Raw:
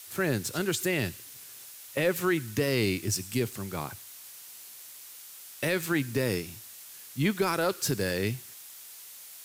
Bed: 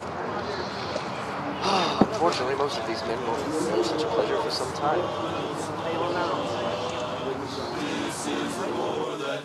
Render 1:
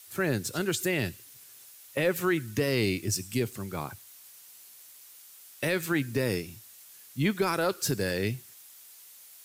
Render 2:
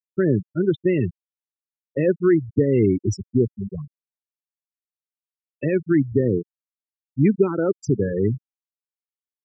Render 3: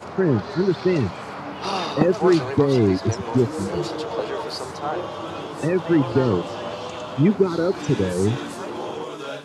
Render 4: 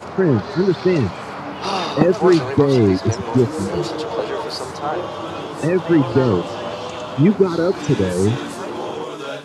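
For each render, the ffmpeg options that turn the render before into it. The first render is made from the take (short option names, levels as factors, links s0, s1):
-af "afftdn=nr=6:nf=-47"
-af "afftfilt=real='re*gte(hypot(re,im),0.1)':imag='im*gte(hypot(re,im),0.1)':win_size=1024:overlap=0.75,lowshelf=f=540:t=q:w=1.5:g=9"
-filter_complex "[1:a]volume=0.794[s0];[0:a][s0]amix=inputs=2:normalize=0"
-af "volume=1.5"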